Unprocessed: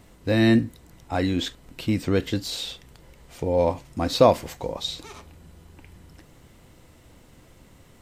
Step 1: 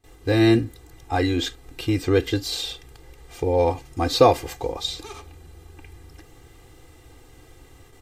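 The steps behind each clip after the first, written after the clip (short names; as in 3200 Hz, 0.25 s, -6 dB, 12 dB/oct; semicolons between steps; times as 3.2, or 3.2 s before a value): gate with hold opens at -43 dBFS; comb 2.5 ms, depth 99%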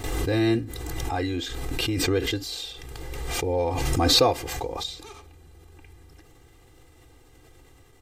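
backwards sustainer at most 23 dB/s; gain -6 dB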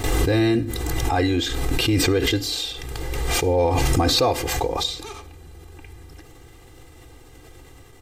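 limiter -18 dBFS, peak gain reduction 10 dB; on a send at -21 dB: reverb RT60 0.65 s, pre-delay 47 ms; on the sum: gain +7.5 dB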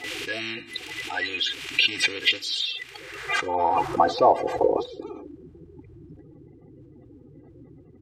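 bin magnitudes rounded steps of 30 dB; band-pass sweep 2600 Hz -> 200 Hz, 2.77–5.71; gain +8 dB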